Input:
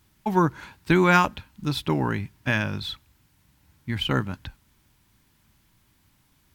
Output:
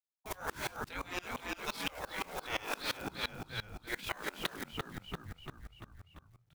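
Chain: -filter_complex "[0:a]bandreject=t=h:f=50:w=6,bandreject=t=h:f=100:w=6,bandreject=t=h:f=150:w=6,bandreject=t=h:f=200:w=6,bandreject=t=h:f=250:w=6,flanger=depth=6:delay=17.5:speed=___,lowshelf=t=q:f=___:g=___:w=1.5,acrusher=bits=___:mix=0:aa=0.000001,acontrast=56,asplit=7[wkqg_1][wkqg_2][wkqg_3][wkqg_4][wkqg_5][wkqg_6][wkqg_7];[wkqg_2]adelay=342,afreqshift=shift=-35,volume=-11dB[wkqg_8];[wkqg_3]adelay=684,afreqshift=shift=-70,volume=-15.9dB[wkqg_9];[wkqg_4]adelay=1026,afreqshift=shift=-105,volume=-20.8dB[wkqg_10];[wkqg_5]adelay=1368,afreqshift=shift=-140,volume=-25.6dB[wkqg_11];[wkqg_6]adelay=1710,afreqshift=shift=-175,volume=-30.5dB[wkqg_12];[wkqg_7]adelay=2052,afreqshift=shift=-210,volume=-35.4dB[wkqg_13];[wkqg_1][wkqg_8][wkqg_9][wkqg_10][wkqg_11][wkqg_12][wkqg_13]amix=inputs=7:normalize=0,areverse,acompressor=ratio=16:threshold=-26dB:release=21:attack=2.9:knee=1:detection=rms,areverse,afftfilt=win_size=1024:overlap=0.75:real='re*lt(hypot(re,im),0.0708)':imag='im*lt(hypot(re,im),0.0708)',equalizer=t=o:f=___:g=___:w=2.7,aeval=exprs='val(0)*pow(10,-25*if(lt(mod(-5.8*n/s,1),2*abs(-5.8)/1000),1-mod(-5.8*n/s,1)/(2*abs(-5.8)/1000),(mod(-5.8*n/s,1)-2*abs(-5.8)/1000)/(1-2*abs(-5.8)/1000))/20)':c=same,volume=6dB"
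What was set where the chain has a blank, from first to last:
1.7, 110, 7.5, 7, 150, 2.5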